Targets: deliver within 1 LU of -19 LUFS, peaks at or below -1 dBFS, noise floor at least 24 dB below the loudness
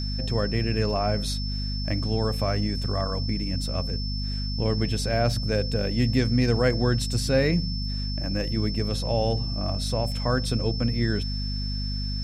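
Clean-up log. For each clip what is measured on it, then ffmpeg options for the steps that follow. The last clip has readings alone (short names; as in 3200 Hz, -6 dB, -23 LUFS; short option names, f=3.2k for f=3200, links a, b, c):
hum 50 Hz; harmonics up to 250 Hz; hum level -27 dBFS; steady tone 5300 Hz; tone level -34 dBFS; loudness -26.0 LUFS; peak -10.0 dBFS; loudness target -19.0 LUFS
-> -af "bandreject=f=50:t=h:w=4,bandreject=f=100:t=h:w=4,bandreject=f=150:t=h:w=4,bandreject=f=200:t=h:w=4,bandreject=f=250:t=h:w=4"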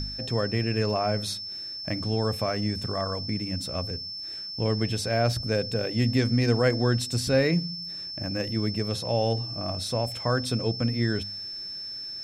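hum none; steady tone 5300 Hz; tone level -34 dBFS
-> -af "bandreject=f=5.3k:w=30"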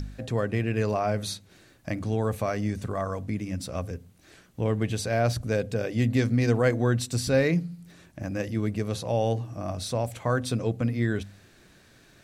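steady tone none; loudness -27.5 LUFS; peak -11.5 dBFS; loudness target -19.0 LUFS
-> -af "volume=8.5dB"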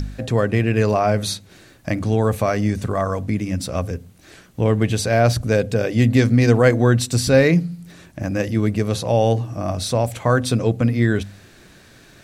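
loudness -19.0 LUFS; peak -3.0 dBFS; noise floor -48 dBFS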